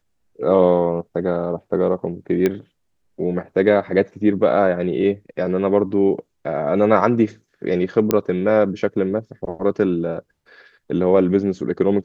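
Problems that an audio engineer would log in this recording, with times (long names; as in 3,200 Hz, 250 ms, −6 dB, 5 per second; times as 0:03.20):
0:02.46: click −7 dBFS
0:08.11: click −3 dBFS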